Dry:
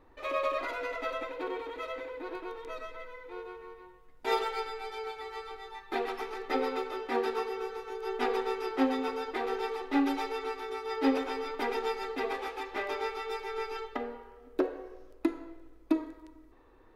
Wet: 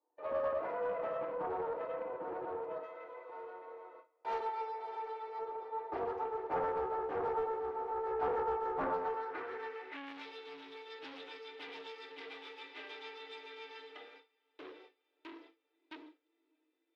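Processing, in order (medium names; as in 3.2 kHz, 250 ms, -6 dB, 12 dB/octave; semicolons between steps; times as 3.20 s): ladder high-pass 300 Hz, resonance 50%; hum notches 50/100/150/200/250/300/350/400 Hz; echo that smears into a reverb 620 ms, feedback 71%, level -12.5 dB; FDN reverb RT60 0.34 s, low-frequency decay 1.5×, high-frequency decay 0.55×, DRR -0.5 dB; saturation -29.5 dBFS, distortion -8 dB; peaking EQ 450 Hz +6 dB 1.5 oct; band-pass sweep 820 Hz -> 3.2 kHz, 8.80–10.31 s; 2.83–5.39 s: tilt shelf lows -8.5 dB, about 1.3 kHz; gate with hold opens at -48 dBFS; loudspeaker Doppler distortion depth 0.42 ms; trim +4.5 dB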